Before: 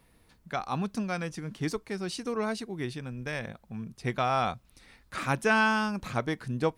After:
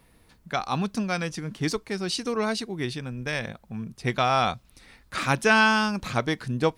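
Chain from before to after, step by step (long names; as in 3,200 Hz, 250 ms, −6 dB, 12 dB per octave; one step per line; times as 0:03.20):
dynamic equaliser 4,300 Hz, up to +6 dB, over −49 dBFS, Q 0.82
level +4 dB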